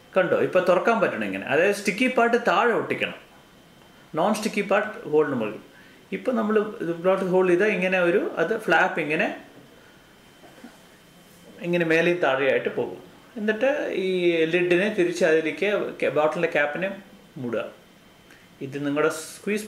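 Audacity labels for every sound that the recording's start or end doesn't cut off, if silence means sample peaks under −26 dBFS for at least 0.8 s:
4.140000	9.350000	sound
11.620000	17.640000	sound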